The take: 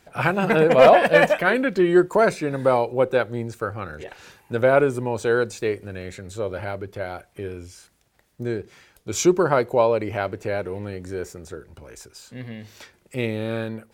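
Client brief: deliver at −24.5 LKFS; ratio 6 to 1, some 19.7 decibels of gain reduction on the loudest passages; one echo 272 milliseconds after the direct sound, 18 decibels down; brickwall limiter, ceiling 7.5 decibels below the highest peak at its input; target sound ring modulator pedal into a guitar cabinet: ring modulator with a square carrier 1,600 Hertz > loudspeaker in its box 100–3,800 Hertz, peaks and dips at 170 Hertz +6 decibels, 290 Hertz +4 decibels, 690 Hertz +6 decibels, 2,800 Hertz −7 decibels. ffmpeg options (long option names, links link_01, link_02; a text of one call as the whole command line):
ffmpeg -i in.wav -af "acompressor=threshold=-30dB:ratio=6,alimiter=level_in=0.5dB:limit=-24dB:level=0:latency=1,volume=-0.5dB,aecho=1:1:272:0.126,aeval=exprs='val(0)*sgn(sin(2*PI*1600*n/s))':channel_layout=same,highpass=100,equalizer=frequency=170:width_type=q:width=4:gain=6,equalizer=frequency=290:width_type=q:width=4:gain=4,equalizer=frequency=690:width_type=q:width=4:gain=6,equalizer=frequency=2800:width_type=q:width=4:gain=-7,lowpass=frequency=3800:width=0.5412,lowpass=frequency=3800:width=1.3066,volume=11.5dB" out.wav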